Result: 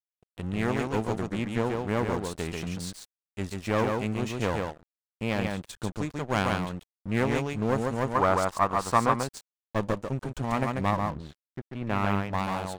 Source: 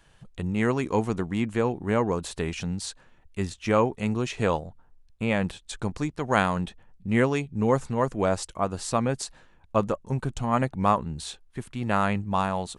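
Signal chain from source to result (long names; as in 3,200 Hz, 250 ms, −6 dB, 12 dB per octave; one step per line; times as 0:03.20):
single-tap delay 140 ms −3.5 dB
asymmetric clip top −28.5 dBFS
0:10.90–0:12.36: low-pass filter 1,600 Hz → 3,500 Hz 12 dB per octave
dead-zone distortion −40 dBFS
0:08.15–0:09.23: parametric band 1,100 Hz +13 dB 1.1 octaves
level −1.5 dB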